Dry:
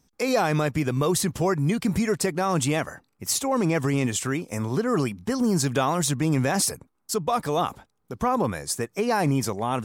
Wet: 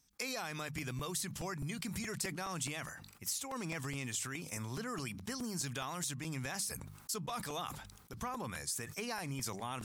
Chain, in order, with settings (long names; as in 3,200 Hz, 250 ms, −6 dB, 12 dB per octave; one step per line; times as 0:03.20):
guitar amp tone stack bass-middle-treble 5-5-5
mains-hum notches 50/100/150/200 Hz
downward compressor, threshold −41 dBFS, peak gain reduction 14 dB
regular buffer underruns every 0.21 s, samples 128, repeat, from 0:00.78
level that may fall only so fast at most 54 dB per second
level +4 dB